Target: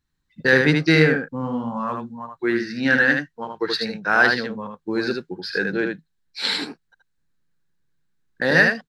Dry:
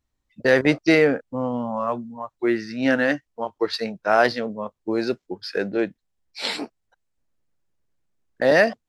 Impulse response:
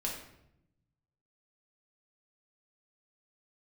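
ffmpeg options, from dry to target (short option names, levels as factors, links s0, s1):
-filter_complex "[0:a]equalizer=f=160:t=o:w=0.33:g=11,equalizer=f=630:t=o:w=0.33:g=-12,equalizer=f=1600:t=o:w=0.33:g=10,equalizer=f=4000:t=o:w=0.33:g=7,asplit=2[s0][s1];[s1]aecho=0:1:77:0.596[s2];[s0][s2]amix=inputs=2:normalize=0,volume=0.891"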